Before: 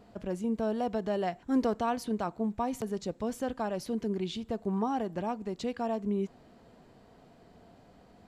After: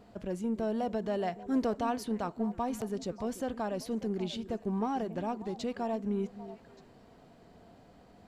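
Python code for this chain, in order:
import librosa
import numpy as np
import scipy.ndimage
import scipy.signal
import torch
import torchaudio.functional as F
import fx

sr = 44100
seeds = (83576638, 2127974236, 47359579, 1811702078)

p1 = 10.0 ** (-34.5 / 20.0) * np.tanh(x / 10.0 ** (-34.5 / 20.0))
p2 = x + (p1 * librosa.db_to_amplitude(-8.0))
p3 = fx.echo_stepped(p2, sr, ms=294, hz=280.0, octaves=1.4, feedback_pct=70, wet_db=-11)
y = p3 * librosa.db_to_amplitude(-3.0)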